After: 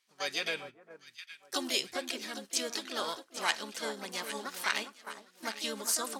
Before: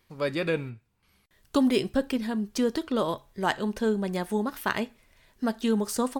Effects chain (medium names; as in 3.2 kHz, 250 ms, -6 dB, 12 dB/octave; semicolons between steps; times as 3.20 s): frequency weighting ITU-R 468; harmony voices +5 st -4 dB; echo whose repeats swap between lows and highs 405 ms, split 1.4 kHz, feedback 68%, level -8.5 dB; gate -38 dBFS, range -8 dB; trim -7.5 dB